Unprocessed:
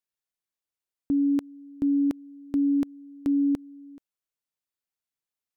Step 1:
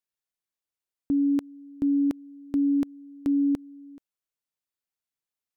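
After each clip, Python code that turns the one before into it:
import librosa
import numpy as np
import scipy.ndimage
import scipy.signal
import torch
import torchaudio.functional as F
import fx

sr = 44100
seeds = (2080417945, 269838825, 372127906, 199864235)

y = x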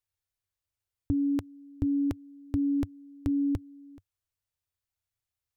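y = fx.low_shelf_res(x, sr, hz=140.0, db=12.5, q=3.0)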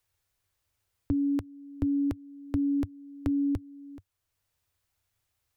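y = fx.band_squash(x, sr, depth_pct=40)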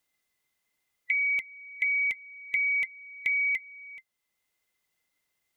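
y = fx.band_swap(x, sr, width_hz=2000)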